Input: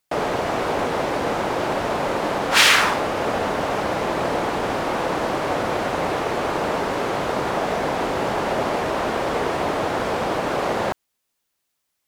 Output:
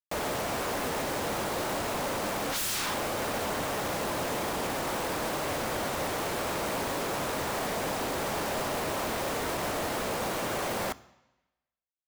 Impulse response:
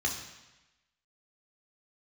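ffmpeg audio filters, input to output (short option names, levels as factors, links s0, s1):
-filter_complex "[0:a]aeval=exprs='0.106*(abs(mod(val(0)/0.106+3,4)-2)-1)':c=same,acrusher=bits=4:mix=0:aa=0.000001,asplit=2[s0][s1];[1:a]atrim=start_sample=2205[s2];[s1][s2]afir=irnorm=-1:irlink=0,volume=0.0841[s3];[s0][s3]amix=inputs=2:normalize=0,volume=0.501"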